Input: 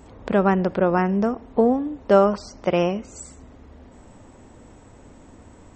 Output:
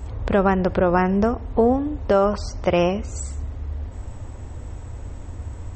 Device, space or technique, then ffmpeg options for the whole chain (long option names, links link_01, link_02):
car stereo with a boomy subwoofer: -af "lowshelf=frequency=130:width_type=q:width=1.5:gain=12,alimiter=limit=-12.5dB:level=0:latency=1:release=273,volume=4.5dB"